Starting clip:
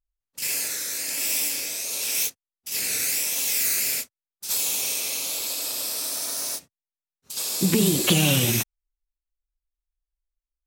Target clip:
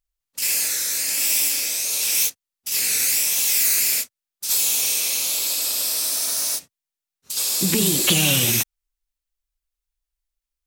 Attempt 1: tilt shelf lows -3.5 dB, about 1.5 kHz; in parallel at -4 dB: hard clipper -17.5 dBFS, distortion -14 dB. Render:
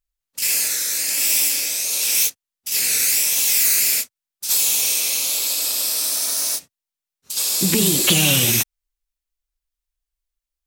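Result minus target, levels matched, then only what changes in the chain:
hard clipper: distortion -9 dB
change: hard clipper -28 dBFS, distortion -5 dB

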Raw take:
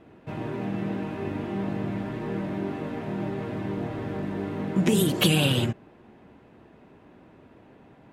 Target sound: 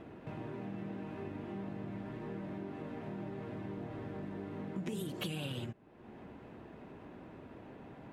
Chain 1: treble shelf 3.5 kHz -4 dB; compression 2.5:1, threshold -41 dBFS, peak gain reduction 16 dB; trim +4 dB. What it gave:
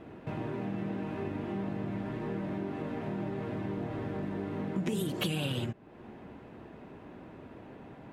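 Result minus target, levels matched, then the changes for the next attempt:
compression: peak gain reduction -7 dB
change: compression 2.5:1, threshold -52.5 dBFS, peak gain reduction 23 dB

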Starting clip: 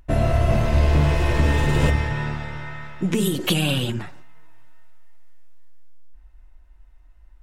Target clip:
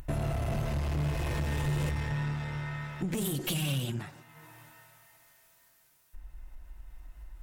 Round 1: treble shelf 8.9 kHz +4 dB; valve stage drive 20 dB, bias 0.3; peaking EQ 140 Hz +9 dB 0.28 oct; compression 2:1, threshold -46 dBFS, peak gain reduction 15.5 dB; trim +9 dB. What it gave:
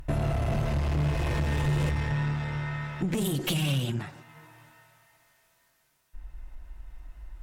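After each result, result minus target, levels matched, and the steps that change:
compression: peak gain reduction -4 dB; 8 kHz band -4.0 dB
change: compression 2:1, threshold -54 dBFS, peak gain reduction 19.5 dB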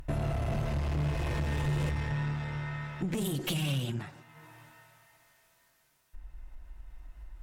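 8 kHz band -4.0 dB
change: treble shelf 8.9 kHz +14 dB

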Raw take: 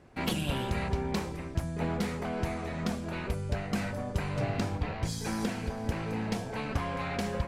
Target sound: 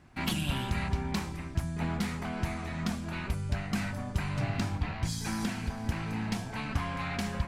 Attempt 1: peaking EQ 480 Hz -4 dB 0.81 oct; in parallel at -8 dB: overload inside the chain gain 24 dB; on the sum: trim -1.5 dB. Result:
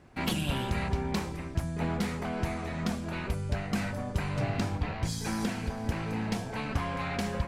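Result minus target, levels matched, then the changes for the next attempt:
500 Hz band +4.5 dB
change: peaking EQ 480 Hz -13 dB 0.81 oct

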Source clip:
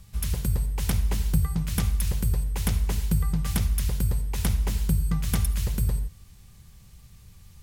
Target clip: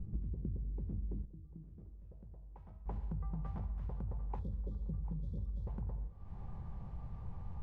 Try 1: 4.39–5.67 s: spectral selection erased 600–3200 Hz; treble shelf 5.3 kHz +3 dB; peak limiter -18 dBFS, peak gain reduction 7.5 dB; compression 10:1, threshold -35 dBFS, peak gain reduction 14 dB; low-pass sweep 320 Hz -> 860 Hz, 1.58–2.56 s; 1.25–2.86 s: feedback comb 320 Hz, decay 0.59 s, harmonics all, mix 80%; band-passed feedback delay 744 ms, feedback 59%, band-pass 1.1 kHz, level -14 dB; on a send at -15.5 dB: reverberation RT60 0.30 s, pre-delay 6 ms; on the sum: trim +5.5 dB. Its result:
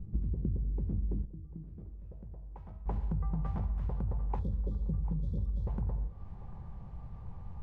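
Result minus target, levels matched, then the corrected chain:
compression: peak gain reduction -6.5 dB
4.39–5.67 s: spectral selection erased 600–3200 Hz; treble shelf 5.3 kHz +3 dB; peak limiter -18 dBFS, peak gain reduction 7.5 dB; compression 10:1, threshold -42.5 dBFS, peak gain reduction 20.5 dB; low-pass sweep 320 Hz -> 860 Hz, 1.58–2.56 s; 1.25–2.86 s: feedback comb 320 Hz, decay 0.59 s, harmonics all, mix 80%; band-passed feedback delay 744 ms, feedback 59%, band-pass 1.1 kHz, level -14 dB; on a send at -15.5 dB: reverberation RT60 0.30 s, pre-delay 6 ms; on the sum: trim +5.5 dB

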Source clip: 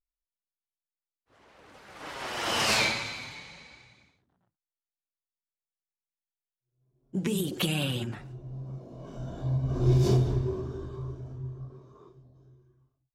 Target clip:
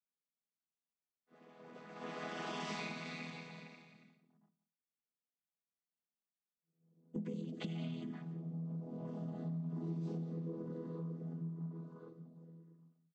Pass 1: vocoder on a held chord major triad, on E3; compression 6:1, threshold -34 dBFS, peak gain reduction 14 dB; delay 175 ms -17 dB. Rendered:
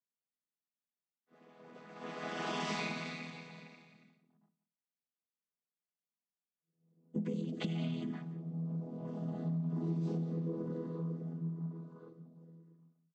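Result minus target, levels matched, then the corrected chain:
compression: peak gain reduction -5 dB
vocoder on a held chord major triad, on E3; compression 6:1, threshold -40 dBFS, peak gain reduction 19 dB; delay 175 ms -17 dB

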